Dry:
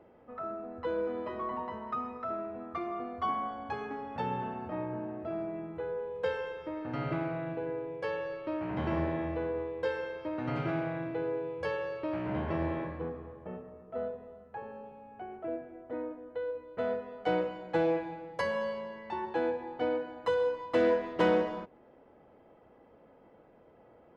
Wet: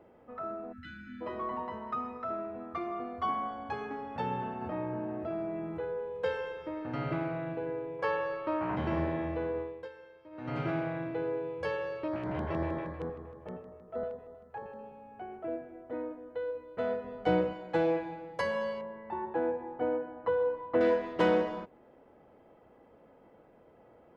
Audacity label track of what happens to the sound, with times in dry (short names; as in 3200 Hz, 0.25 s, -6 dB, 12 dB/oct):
0.720000	1.210000	spectral delete 320–1300 Hz
4.610000	5.850000	fast leveller amount 50%
7.990000	8.760000	bell 1100 Hz +9.5 dB 1.2 oct
9.580000	10.610000	dip -16 dB, fades 0.31 s
12.080000	14.790000	LFO notch square 6.4 Hz 220–2700 Hz
17.040000	17.530000	low shelf 220 Hz +11.5 dB
18.810000	20.810000	LPF 1500 Hz